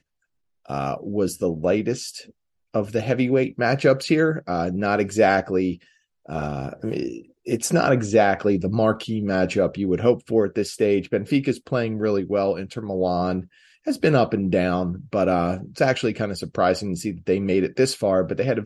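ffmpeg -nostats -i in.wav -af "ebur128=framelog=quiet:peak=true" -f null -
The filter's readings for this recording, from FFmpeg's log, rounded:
Integrated loudness:
  I:         -22.5 LUFS
  Threshold: -32.8 LUFS
Loudness range:
  LRA:         2.9 LU
  Threshold: -42.7 LUFS
  LRA low:   -24.1 LUFS
  LRA high:  -21.2 LUFS
True peak:
  Peak:       -4.1 dBFS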